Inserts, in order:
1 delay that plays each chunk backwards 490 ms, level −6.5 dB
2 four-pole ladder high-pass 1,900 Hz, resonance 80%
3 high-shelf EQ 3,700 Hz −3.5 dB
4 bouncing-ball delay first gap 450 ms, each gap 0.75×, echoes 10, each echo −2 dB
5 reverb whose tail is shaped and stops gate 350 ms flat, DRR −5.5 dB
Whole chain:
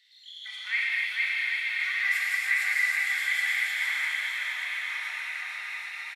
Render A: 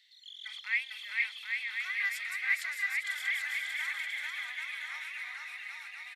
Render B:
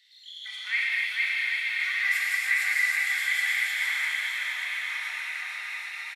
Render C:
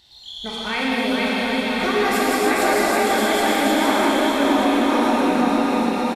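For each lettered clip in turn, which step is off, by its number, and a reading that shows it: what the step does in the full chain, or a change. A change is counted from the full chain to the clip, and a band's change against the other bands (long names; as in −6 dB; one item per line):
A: 5, echo-to-direct ratio 10.5 dB to 2.5 dB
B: 3, 8 kHz band +2.0 dB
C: 2, 1 kHz band +16.5 dB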